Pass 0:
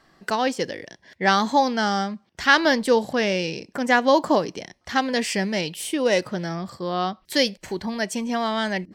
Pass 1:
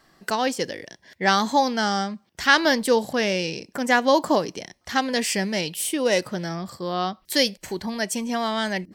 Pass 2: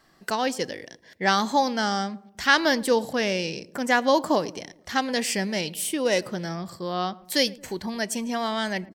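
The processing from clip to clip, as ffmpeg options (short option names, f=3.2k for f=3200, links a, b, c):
-af "highshelf=f=8k:g=11.5,volume=-1dB"
-filter_complex "[0:a]asplit=2[a][b];[b]adelay=112,lowpass=f=880:p=1,volume=-19dB,asplit=2[c][d];[d]adelay=112,lowpass=f=880:p=1,volume=0.54,asplit=2[e][f];[f]adelay=112,lowpass=f=880:p=1,volume=0.54,asplit=2[g][h];[h]adelay=112,lowpass=f=880:p=1,volume=0.54[i];[a][c][e][g][i]amix=inputs=5:normalize=0,volume=-2dB"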